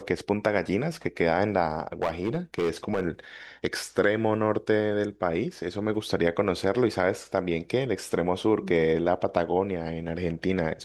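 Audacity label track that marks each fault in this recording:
2.020000	3.040000	clipped -20.5 dBFS

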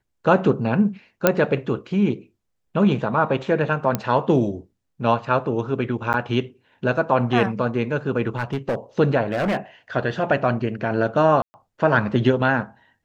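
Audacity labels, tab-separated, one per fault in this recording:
1.270000	1.270000	pop -1 dBFS
3.950000	3.950000	pop -7 dBFS
6.130000	6.140000	dropout 9.4 ms
8.370000	8.750000	clipped -18.5 dBFS
9.310000	9.570000	clipped -18.5 dBFS
11.420000	11.540000	dropout 120 ms

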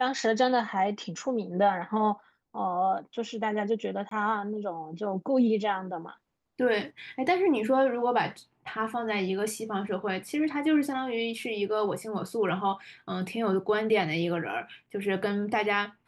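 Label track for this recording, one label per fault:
4.090000	4.110000	dropout 23 ms

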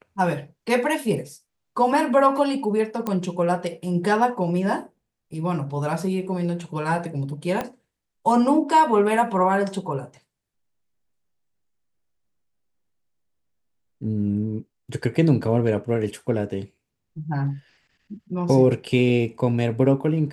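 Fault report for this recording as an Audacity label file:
3.070000	3.070000	pop -13 dBFS
7.610000	7.610000	pop -13 dBFS

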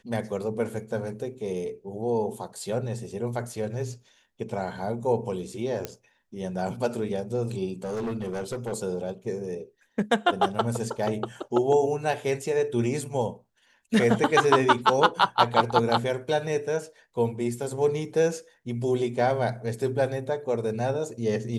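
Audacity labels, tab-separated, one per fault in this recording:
5.850000	5.850000	pop -15 dBFS
7.840000	8.730000	clipped -27 dBFS

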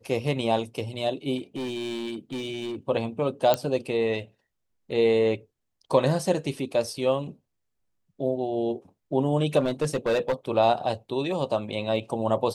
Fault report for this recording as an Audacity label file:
1.370000	2.760000	clipped -28 dBFS
3.540000	3.540000	pop -8 dBFS
9.590000	10.330000	clipped -19.5 dBFS

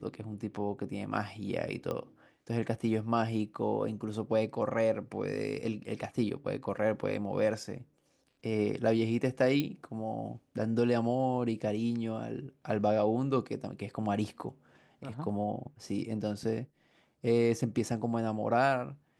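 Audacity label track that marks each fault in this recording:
1.910000	1.910000	pop -23 dBFS
9.600000	9.600000	pop -18 dBFS

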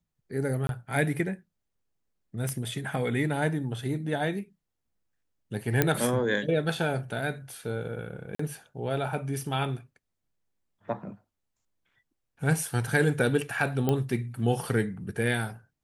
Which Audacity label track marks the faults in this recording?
0.670000	0.690000	dropout 22 ms
2.490000	2.490000	pop -17 dBFS
5.820000	5.820000	pop -7 dBFS
8.350000	8.390000	dropout 44 ms
13.890000	13.890000	pop -13 dBFS

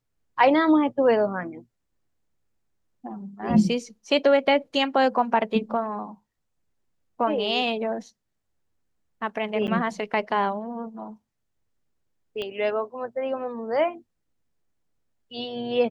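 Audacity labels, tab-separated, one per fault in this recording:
9.670000	9.680000	dropout 8.8 ms
12.420000	12.420000	pop -20 dBFS

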